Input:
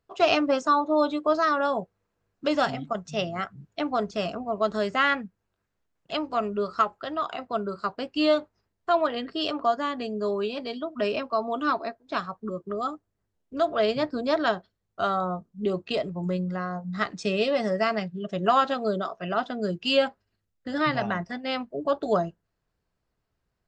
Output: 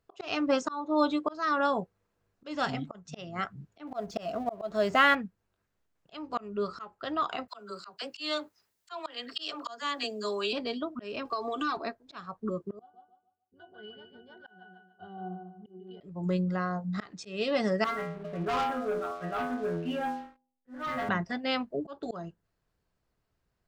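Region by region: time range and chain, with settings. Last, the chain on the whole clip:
3.87–5.15 G.711 law mismatch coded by mu + bell 660 Hz +15 dB 0.27 oct
7.48–10.53 tilt +4 dB/oct + dispersion lows, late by 45 ms, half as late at 680 Hz
11.25–11.77 high shelf 2900 Hz +11.5 dB + comb 2.6 ms, depth 79% + compressor, threshold -27 dBFS
12.79–16.01 low shelf 260 Hz -8.5 dB + octave resonator F#, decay 0.28 s + feedback echo 0.146 s, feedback 32%, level -6.5 dB
17.84–21.09 LPF 1900 Hz 24 dB/oct + metallic resonator 83 Hz, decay 0.73 s, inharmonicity 0.002 + sample leveller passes 3
whole clip: dynamic EQ 640 Hz, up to -6 dB, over -39 dBFS, Q 3.6; auto swell 0.326 s

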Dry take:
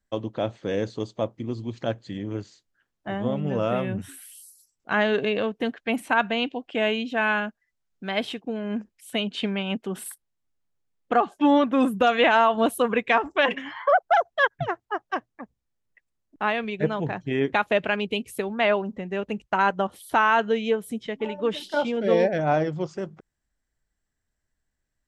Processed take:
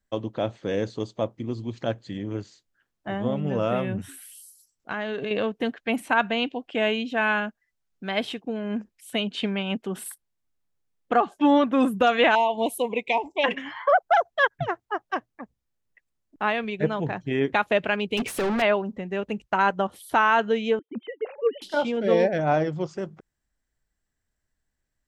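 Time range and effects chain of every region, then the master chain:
4.12–5.31 de-hum 389.9 Hz, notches 16 + compressor, threshold -26 dBFS
12.35–13.44 elliptic band-stop 970–2200 Hz, stop band 50 dB + low shelf 240 Hz -11 dB
18.17–18.62 compressor, threshold -26 dBFS + overdrive pedal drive 34 dB, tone 2200 Hz, clips at -17.5 dBFS
20.79–21.62 sine-wave speech + gate -47 dBFS, range -23 dB + air absorption 220 m
whole clip: dry

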